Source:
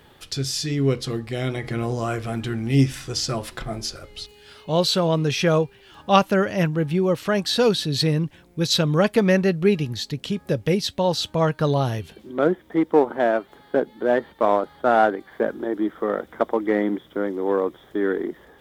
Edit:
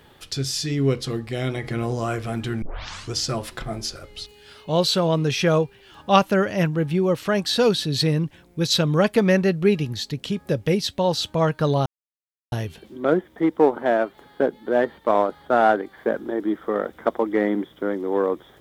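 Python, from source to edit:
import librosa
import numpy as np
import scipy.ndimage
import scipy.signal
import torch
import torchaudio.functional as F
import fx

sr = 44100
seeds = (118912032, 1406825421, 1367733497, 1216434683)

y = fx.edit(x, sr, fx.tape_start(start_s=2.62, length_s=0.51),
    fx.insert_silence(at_s=11.86, length_s=0.66), tone=tone)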